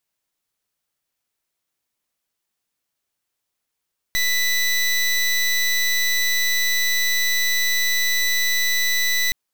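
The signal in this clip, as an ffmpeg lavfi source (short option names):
-f lavfi -i "aevalsrc='0.106*(2*lt(mod(1980*t,1),0.22)-1)':d=5.17:s=44100"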